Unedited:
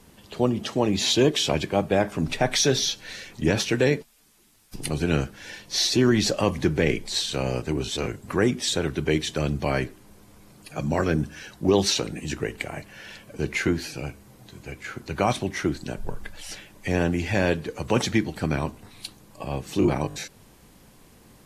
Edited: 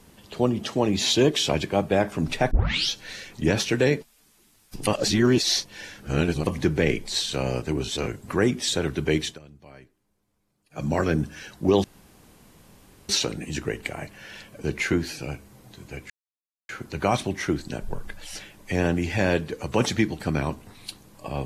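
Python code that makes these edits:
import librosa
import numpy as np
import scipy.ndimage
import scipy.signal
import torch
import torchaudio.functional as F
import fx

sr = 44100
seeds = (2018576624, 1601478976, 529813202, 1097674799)

y = fx.edit(x, sr, fx.tape_start(start_s=2.51, length_s=0.39),
    fx.reverse_span(start_s=4.87, length_s=1.6),
    fx.fade_down_up(start_s=9.25, length_s=1.59, db=-23.0, fade_s=0.14),
    fx.insert_room_tone(at_s=11.84, length_s=1.25),
    fx.insert_silence(at_s=14.85, length_s=0.59), tone=tone)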